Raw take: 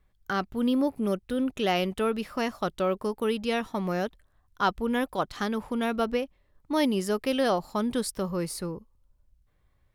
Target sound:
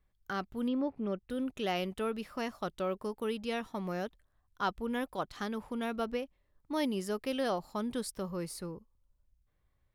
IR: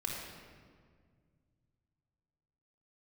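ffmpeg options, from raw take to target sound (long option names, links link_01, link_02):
-filter_complex "[0:a]asettb=1/sr,asplit=3[link_01][link_02][link_03];[link_01]atrim=end=0.684[link_04];[link_02]atrim=start=0.68:end=1.3,asetpts=PTS-STARTPTS,afade=type=in:duration=0.004:curve=qsin,afade=type=out:start_time=0.616:duration=0.004:curve=qsin,lowpass=3100[link_05];[link_03]atrim=start=1.296[link_06];[link_04][link_05]acrossfade=duration=0.004:curve1=hsin:curve2=qsin[link_07];[link_07][link_06]acrossfade=duration=0.004:curve1=qsin:curve2=hsin,volume=-7.5dB"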